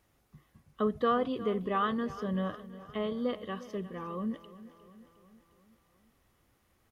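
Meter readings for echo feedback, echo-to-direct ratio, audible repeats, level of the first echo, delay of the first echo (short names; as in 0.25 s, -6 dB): 58%, -14.5 dB, 4, -16.5 dB, 0.356 s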